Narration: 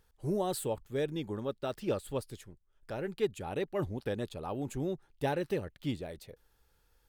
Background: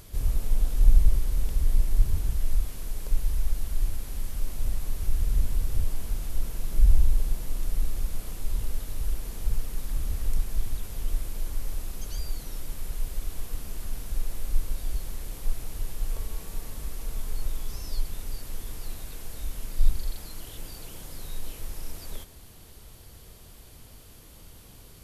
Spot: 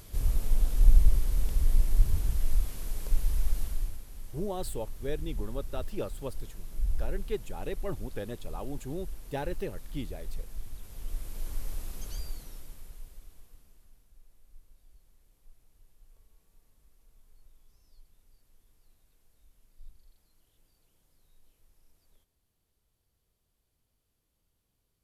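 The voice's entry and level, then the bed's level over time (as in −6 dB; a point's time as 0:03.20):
4.10 s, −3.0 dB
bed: 0:03.63 −1.5 dB
0:04.05 −11.5 dB
0:10.73 −11.5 dB
0:11.51 −4 dB
0:12.13 −4 dB
0:14.11 −29 dB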